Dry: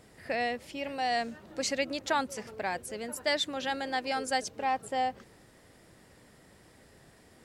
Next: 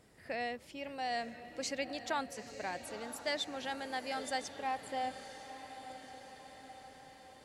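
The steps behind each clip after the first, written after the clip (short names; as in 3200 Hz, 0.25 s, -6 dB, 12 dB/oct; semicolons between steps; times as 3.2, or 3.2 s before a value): diffused feedback echo 0.937 s, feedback 61%, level -11.5 dB; gain -7 dB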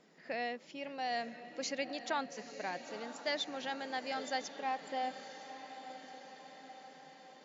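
FFT band-pass 140–7300 Hz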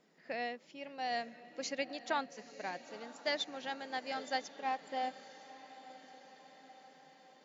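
upward expander 1.5:1, over -45 dBFS; gain +1.5 dB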